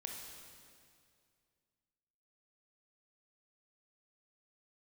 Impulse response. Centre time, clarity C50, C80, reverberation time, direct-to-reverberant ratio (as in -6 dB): 83 ms, 2.0 dB, 3.5 dB, 2.2 s, 0.5 dB